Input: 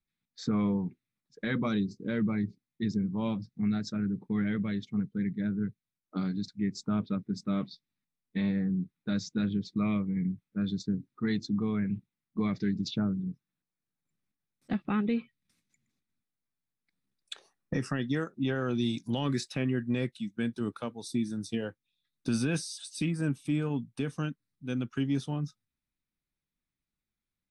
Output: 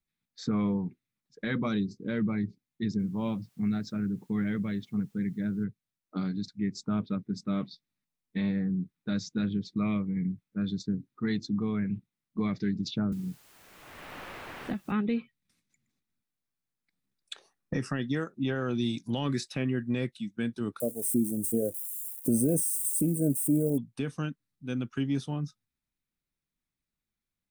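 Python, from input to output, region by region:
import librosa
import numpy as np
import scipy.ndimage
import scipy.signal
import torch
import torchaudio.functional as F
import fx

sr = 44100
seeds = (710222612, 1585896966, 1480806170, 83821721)

y = fx.chain(x, sr, fx.high_shelf(hz=5200.0, db=-8.0),
    fx.quant_dither(seeds[0], bits=12, dither='triangular'), at=(2.99, 5.64))
y = fx.chain(y, sr, fx.high_shelf(hz=6100.0, db=10.0),
    fx.quant_dither(seeds[1], bits=10, dither='triangular'),
    fx.band_squash(depth_pct=100), at=(13.12, 14.92))
y = fx.chain(y, sr, fx.crossing_spikes(level_db=-37.0),
    fx.curve_eq(hz=(130.0, 620.0, 940.0, 4100.0, 8900.0), db=(0, 9, -24, -28, 12)), at=(20.8, 23.78))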